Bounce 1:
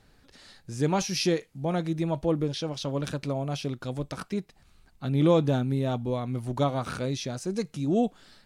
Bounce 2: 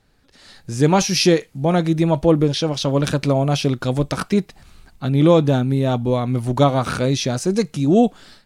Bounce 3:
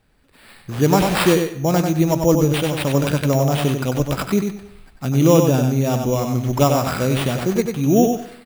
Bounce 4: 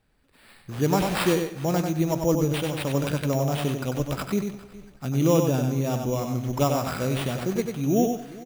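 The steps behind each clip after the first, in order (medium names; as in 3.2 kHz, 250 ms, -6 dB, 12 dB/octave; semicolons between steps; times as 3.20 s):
level rider gain up to 15 dB; trim -1.5 dB
sample-rate reducer 6.3 kHz, jitter 0%; on a send: feedback delay 95 ms, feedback 21%, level -5.5 dB; on the sum: algorithmic reverb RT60 0.65 s, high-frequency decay 0.65×, pre-delay 65 ms, DRR 16 dB; trim -1 dB
feedback delay 413 ms, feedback 31%, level -20 dB; trim -7 dB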